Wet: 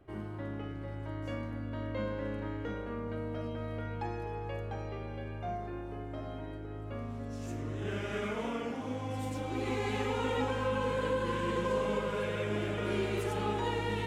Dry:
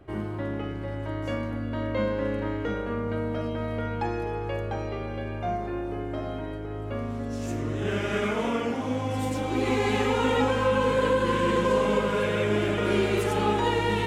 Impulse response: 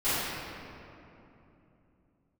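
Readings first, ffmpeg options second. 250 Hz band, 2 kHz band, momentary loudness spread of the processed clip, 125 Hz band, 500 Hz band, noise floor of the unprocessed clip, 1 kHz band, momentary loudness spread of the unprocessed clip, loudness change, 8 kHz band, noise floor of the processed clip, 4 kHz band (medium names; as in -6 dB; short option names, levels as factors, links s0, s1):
-9.0 dB, -8.5 dB, 9 LU, -6.5 dB, -9.0 dB, -33 dBFS, -8.5 dB, 10 LU, -8.5 dB, -9.0 dB, -41 dBFS, -8.5 dB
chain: -filter_complex "[0:a]asplit=2[s0][s1];[1:a]atrim=start_sample=2205[s2];[s1][s2]afir=irnorm=-1:irlink=0,volume=0.0422[s3];[s0][s3]amix=inputs=2:normalize=0,volume=0.355"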